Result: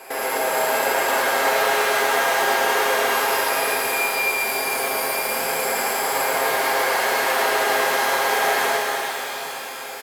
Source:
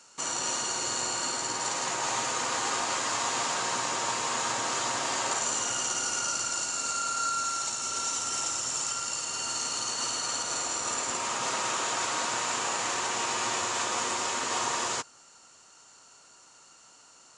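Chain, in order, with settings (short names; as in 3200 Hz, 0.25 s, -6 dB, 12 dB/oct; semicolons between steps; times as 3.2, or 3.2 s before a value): high shelf 7800 Hz -7.5 dB; in parallel at +1.5 dB: negative-ratio compressor -35 dBFS; on the sum: limiter -22.5 dBFS, peak gain reduction 9 dB; soft clip -31 dBFS, distortion -12 dB; doubler 13 ms -4 dB; small resonant body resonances 280/420 Hz, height 17 dB, ringing for 20 ms; on a send: loudspeakers at several distances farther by 24 m -9 dB, 65 m -4 dB; on the sum: speed mistake 45 rpm record played at 78 rpm; shimmer reverb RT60 3.8 s, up +12 st, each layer -8 dB, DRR -2 dB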